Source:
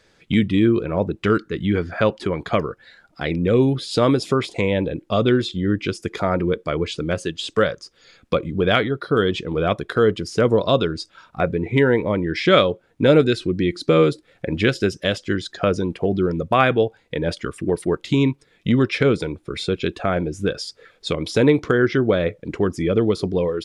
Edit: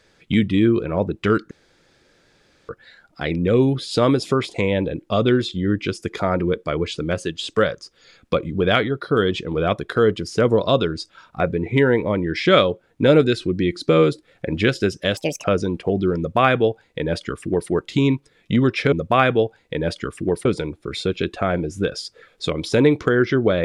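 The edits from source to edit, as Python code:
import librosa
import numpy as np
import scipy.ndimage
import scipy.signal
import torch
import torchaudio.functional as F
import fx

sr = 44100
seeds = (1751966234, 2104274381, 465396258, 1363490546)

y = fx.edit(x, sr, fx.room_tone_fill(start_s=1.51, length_s=1.18),
    fx.speed_span(start_s=15.17, length_s=0.43, speed=1.58),
    fx.duplicate(start_s=16.33, length_s=1.53, to_s=19.08), tone=tone)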